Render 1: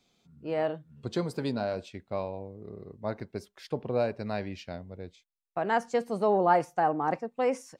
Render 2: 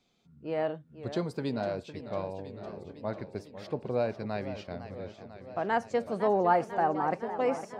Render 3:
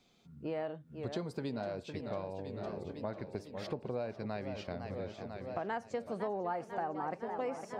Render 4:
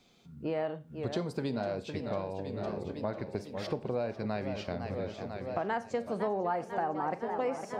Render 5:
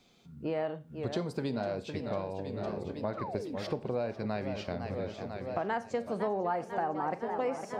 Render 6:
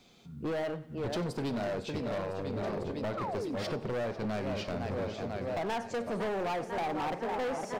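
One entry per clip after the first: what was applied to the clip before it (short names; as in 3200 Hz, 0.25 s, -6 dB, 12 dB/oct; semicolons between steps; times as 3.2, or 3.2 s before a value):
high shelf 7600 Hz -9 dB; warbling echo 0.502 s, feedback 70%, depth 170 cents, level -12 dB; gain -1.5 dB
compressor 4:1, threshold -40 dBFS, peak gain reduction 17 dB; gain +3.5 dB
Schroeder reverb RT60 0.34 s, combs from 30 ms, DRR 15 dB; gain +4.5 dB
painted sound fall, 3.17–3.56, 230–1400 Hz -40 dBFS
overloaded stage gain 34.5 dB; feedback echo 93 ms, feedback 51%, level -19 dB; gain +4 dB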